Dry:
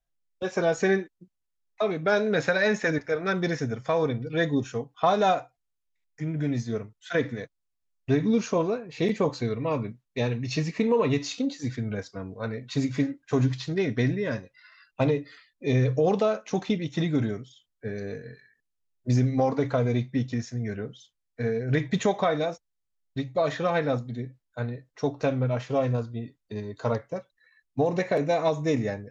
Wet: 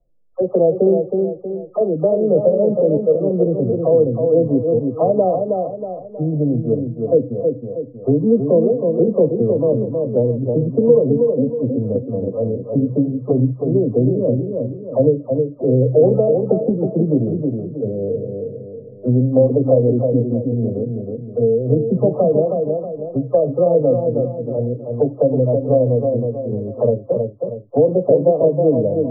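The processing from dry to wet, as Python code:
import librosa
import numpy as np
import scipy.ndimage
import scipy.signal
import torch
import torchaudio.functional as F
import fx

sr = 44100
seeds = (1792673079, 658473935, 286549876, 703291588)

p1 = fx.spec_delay(x, sr, highs='early', ms=384)
p2 = fx.brickwall_lowpass(p1, sr, high_hz=1300.0)
p3 = fx.low_shelf_res(p2, sr, hz=760.0, db=12.5, q=3.0)
p4 = p3 + fx.echo_feedback(p3, sr, ms=318, feedback_pct=32, wet_db=-6.0, dry=0)
p5 = fx.band_squash(p4, sr, depth_pct=40)
y = F.gain(torch.from_numpy(p5), -6.0).numpy()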